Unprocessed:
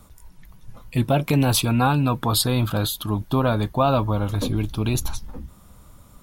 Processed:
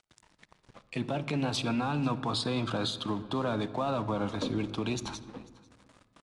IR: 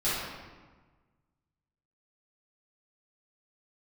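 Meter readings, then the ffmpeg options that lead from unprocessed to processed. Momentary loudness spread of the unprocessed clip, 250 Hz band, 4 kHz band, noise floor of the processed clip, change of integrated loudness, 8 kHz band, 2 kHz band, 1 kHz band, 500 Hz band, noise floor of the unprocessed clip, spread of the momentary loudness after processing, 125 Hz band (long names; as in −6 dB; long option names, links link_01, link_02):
8 LU, −8.0 dB, −7.5 dB, −69 dBFS, −10.0 dB, −15.5 dB, −8.0 dB, −10.0 dB, −8.5 dB, −50 dBFS, 8 LU, −14.0 dB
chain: -filter_complex "[0:a]agate=range=-18dB:threshold=-46dB:ratio=16:detection=peak,highpass=56,acrossover=split=190 6300:gain=0.158 1 0.126[link_01][link_02][link_03];[link_01][link_02][link_03]amix=inputs=3:normalize=0,acrossover=split=200[link_04][link_05];[link_05]acompressor=threshold=-28dB:ratio=2[link_06];[link_04][link_06]amix=inputs=2:normalize=0,alimiter=limit=-21.5dB:level=0:latency=1:release=53,acompressor=mode=upward:threshold=-42dB:ratio=2.5,aeval=exprs='sgn(val(0))*max(abs(val(0))-0.00355,0)':channel_layout=same,aecho=1:1:494:0.0708,asplit=2[link_07][link_08];[1:a]atrim=start_sample=2205,lowshelf=frequency=440:gain=9,adelay=54[link_09];[link_08][link_09]afir=irnorm=-1:irlink=0,volume=-27.5dB[link_10];[link_07][link_10]amix=inputs=2:normalize=0,aresample=22050,aresample=44100"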